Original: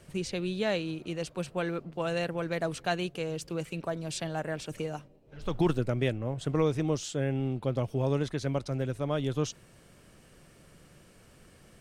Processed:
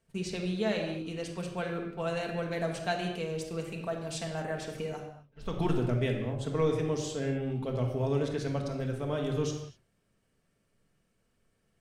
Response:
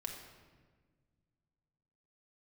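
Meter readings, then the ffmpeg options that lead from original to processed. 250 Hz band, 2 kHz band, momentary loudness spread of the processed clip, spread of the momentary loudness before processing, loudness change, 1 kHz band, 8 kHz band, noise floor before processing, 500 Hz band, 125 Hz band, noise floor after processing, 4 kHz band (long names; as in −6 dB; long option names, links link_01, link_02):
−1.5 dB, −1.5 dB, 8 LU, 8 LU, −1.0 dB, −1.0 dB, −2.0 dB, −58 dBFS, −0.5 dB, −1.0 dB, −74 dBFS, −1.5 dB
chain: -filter_complex "[0:a]agate=range=-17dB:threshold=-45dB:ratio=16:detection=peak[link_01];[1:a]atrim=start_sample=2205,afade=type=out:start_time=0.31:duration=0.01,atrim=end_sample=14112[link_02];[link_01][link_02]afir=irnorm=-1:irlink=0"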